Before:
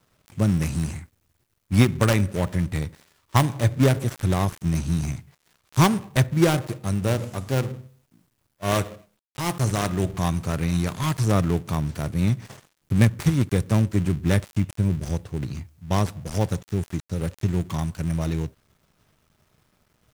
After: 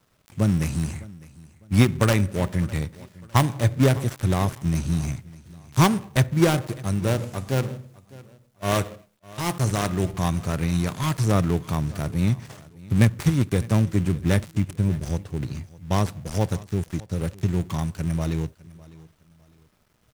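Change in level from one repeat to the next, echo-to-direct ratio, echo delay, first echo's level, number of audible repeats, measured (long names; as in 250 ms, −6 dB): −10.0 dB, −20.5 dB, 605 ms, −21.0 dB, 2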